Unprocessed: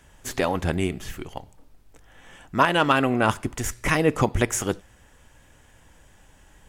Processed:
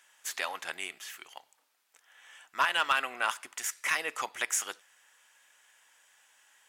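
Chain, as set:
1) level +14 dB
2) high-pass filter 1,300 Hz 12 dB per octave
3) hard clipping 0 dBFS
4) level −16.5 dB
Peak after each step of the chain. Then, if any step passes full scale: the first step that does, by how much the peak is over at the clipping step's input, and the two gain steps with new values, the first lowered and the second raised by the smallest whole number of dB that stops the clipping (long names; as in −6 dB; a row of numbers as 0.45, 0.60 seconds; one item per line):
+8.0, +6.0, 0.0, −16.5 dBFS
step 1, 6.0 dB
step 1 +8 dB, step 4 −10.5 dB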